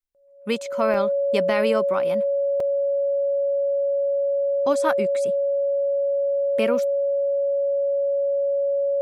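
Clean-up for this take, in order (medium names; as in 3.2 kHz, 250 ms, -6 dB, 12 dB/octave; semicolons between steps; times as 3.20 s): band-stop 560 Hz, Q 30; interpolate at 0.94/2.60 s, 3.4 ms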